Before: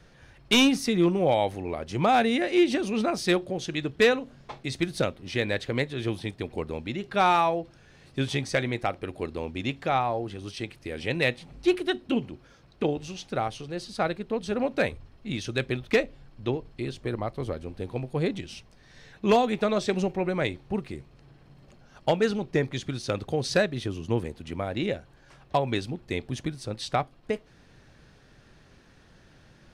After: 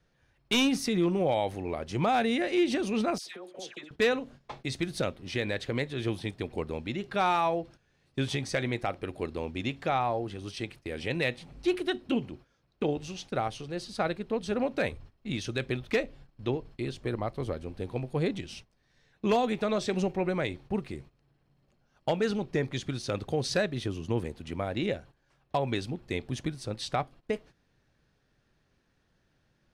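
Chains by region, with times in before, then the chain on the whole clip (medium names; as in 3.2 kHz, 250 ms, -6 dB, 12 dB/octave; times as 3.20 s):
3.18–3.91 s: high-pass 420 Hz + compression 16:1, threshold -36 dBFS + phase dispersion lows, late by 91 ms, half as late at 1.3 kHz
whole clip: gate -46 dBFS, range -14 dB; peak limiter -17 dBFS; trim -1.5 dB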